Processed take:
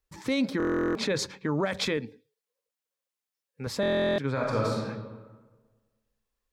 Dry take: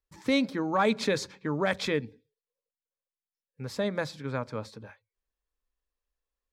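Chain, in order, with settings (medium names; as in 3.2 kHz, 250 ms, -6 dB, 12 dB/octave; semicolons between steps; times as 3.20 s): 0.79–1.19 s: treble shelf 6.2 kHz -11.5 dB; 1.97–3.67 s: high-pass 230 Hz 6 dB/octave; peak limiter -24 dBFS, peak gain reduction 11 dB; 4.32–4.82 s: reverb throw, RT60 1.4 s, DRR -4 dB; buffer glitch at 0.58/3.81 s, samples 1024, times 15; trim +5.5 dB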